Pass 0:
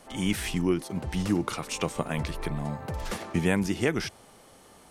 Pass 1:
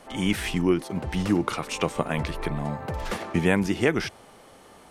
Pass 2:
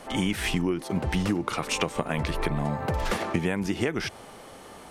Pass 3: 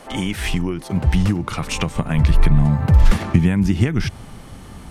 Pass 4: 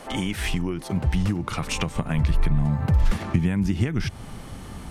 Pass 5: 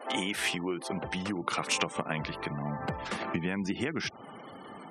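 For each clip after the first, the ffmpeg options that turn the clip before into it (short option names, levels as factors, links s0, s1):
-af "bass=f=250:g=-3,treble=f=4000:g=-6,volume=1.68"
-af "acompressor=threshold=0.0447:ratio=12,volume=1.78"
-af "asubboost=boost=10.5:cutoff=160,volume=1.41"
-af "acompressor=threshold=0.0355:ratio=1.5"
-af "highpass=340,afftfilt=real='re*gte(hypot(re,im),0.00708)':imag='im*gte(hypot(re,im),0.00708)':win_size=1024:overlap=0.75"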